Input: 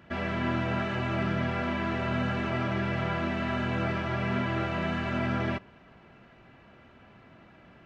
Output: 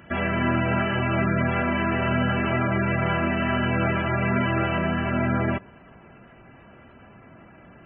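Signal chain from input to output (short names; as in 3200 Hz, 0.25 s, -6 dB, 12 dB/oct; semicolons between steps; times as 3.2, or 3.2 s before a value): spectral gate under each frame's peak -20 dB strong; high shelf 3600 Hz +9 dB, from 4.78 s -4 dB; gain +6 dB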